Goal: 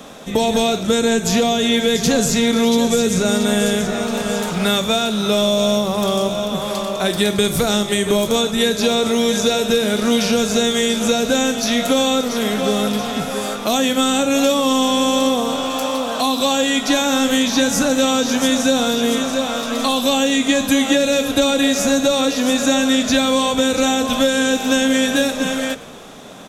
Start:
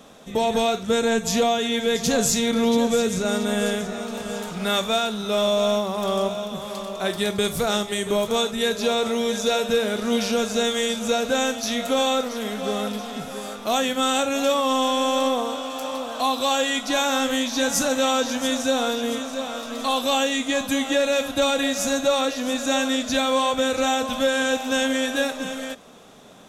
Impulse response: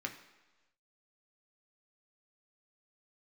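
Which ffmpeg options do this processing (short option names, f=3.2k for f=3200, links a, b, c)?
-filter_complex "[0:a]asplit=5[a][b][c][d][e];[b]adelay=116,afreqshift=-58,volume=-20.5dB[f];[c]adelay=232,afreqshift=-116,volume=-26.7dB[g];[d]adelay=348,afreqshift=-174,volume=-32.9dB[h];[e]adelay=464,afreqshift=-232,volume=-39.1dB[i];[a][f][g][h][i]amix=inputs=5:normalize=0,acrossover=split=390|3300[j][k][l];[j]acompressor=threshold=-26dB:ratio=4[m];[k]acompressor=threshold=-31dB:ratio=4[n];[l]acompressor=threshold=-32dB:ratio=4[o];[m][n][o]amix=inputs=3:normalize=0,asplit=2[p][q];[1:a]atrim=start_sample=2205[r];[q][r]afir=irnorm=-1:irlink=0,volume=-15dB[s];[p][s]amix=inputs=2:normalize=0,volume=9dB"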